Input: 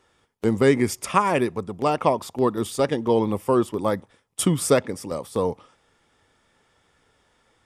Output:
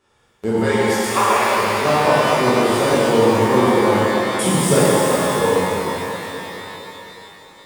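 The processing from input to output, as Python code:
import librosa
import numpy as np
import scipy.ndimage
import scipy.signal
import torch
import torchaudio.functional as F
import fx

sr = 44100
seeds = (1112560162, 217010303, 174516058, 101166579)

y = fx.highpass(x, sr, hz=460.0, slope=24, at=(0.59, 1.55))
y = fx.rev_shimmer(y, sr, seeds[0], rt60_s=3.7, semitones=12, shimmer_db=-8, drr_db=-11.0)
y = F.gain(torch.from_numpy(y), -4.5).numpy()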